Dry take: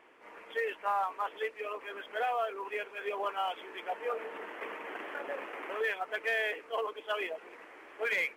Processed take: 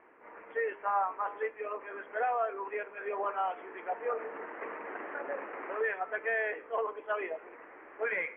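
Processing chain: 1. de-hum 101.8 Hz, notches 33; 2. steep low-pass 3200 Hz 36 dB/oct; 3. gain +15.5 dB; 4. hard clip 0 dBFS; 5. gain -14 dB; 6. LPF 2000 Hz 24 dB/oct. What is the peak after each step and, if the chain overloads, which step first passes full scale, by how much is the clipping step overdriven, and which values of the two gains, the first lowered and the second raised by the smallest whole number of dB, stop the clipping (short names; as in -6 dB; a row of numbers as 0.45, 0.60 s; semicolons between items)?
-20.5, -20.5, -5.0, -5.0, -19.0, -20.0 dBFS; no overload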